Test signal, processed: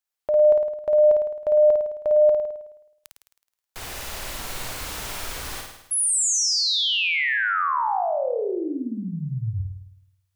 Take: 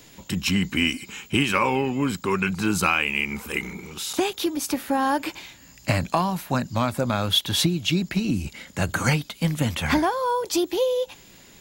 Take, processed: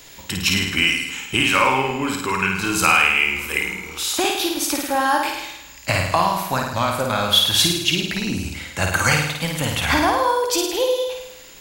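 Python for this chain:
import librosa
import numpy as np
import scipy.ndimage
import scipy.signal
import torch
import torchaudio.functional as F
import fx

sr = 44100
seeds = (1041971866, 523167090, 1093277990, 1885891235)

p1 = fx.peak_eq(x, sr, hz=190.0, db=-10.5, octaves=2.3)
p2 = fx.rider(p1, sr, range_db=5, speed_s=2.0)
p3 = p1 + F.gain(torch.from_numpy(p2), -2.5).numpy()
y = fx.room_flutter(p3, sr, wall_m=9.1, rt60_s=0.84)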